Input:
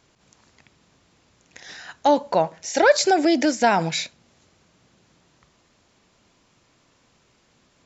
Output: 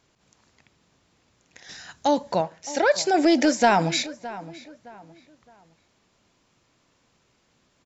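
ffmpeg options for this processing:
-filter_complex "[0:a]asettb=1/sr,asplit=3[a][b][c];[a]atrim=end=1.694[d];[b]atrim=start=1.69:end=2.41,asetpts=PTS-STARTPTS,afade=t=in:d=0.004:c=qsin,afade=t=out:st=0.716:d=0.004:c=qsin,bass=f=250:g=8,treble=f=4k:g=8[e];[c]atrim=start=2.406[f];[d][e]acrossfade=d=0.004:c1=hsin:c2=qsin[g];[g][f]acrossfade=d=0.004:c1=qsin:c2=hsin,asettb=1/sr,asplit=3[h][i][j];[h]atrim=end=3.144[k];[i]atrim=start=3.14:end=4.03,asetpts=PTS-STARTPTS,afade=t=in:d=0.004:c=qsin,afade=t=out:st=0.886:d=0.004:c=qsin,acontrast=32[l];[j]atrim=start=4.026[m];[k][l]acrossfade=d=0.004:c1=hsin:c2=qsin[n];[n][m]acrossfade=d=0.004:c1=qsin:c2=hsin,asplit=2[o][p];[p]adelay=615,lowpass=f=2.9k:p=1,volume=-16.5dB,asplit=2[q][r];[r]adelay=615,lowpass=f=2.9k:p=1,volume=0.33,asplit=2[s][t];[t]adelay=615,lowpass=f=2.9k:p=1,volume=0.33[u];[o][q][s][u]amix=inputs=4:normalize=0,volume=-4.5dB"

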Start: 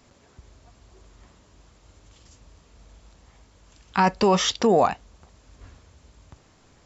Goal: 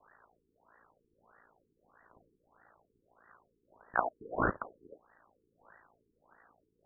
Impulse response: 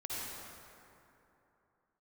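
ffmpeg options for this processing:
-af "aeval=exprs='val(0)*sin(2*PI*28*n/s)':c=same,lowpass=f=2.8k:t=q:w=0.5098,lowpass=f=2.8k:t=q:w=0.6013,lowpass=f=2.8k:t=q:w=0.9,lowpass=f=2.8k:t=q:w=2.563,afreqshift=-3300,afftfilt=real='re*lt(b*sr/1024,450*pow(2000/450,0.5+0.5*sin(2*PI*1.6*pts/sr)))':imag='im*lt(b*sr/1024,450*pow(2000/450,0.5+0.5*sin(2*PI*1.6*pts/sr)))':win_size=1024:overlap=0.75,volume=8.5dB"

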